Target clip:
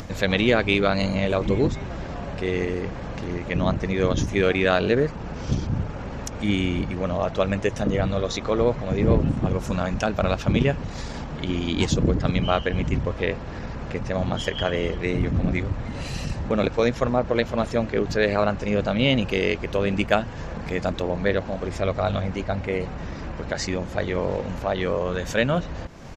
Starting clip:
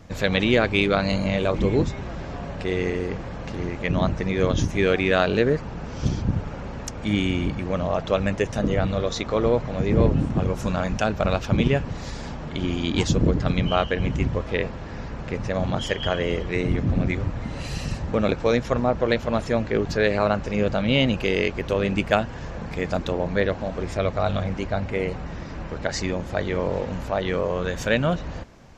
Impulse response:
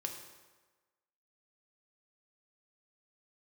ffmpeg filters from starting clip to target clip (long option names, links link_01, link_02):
-af "bandreject=frequency=54.3:width_type=h:width=4,bandreject=frequency=108.6:width_type=h:width=4,bandreject=frequency=162.9:width_type=h:width=4,acompressor=mode=upward:threshold=-27dB:ratio=2.5,atempo=1.1"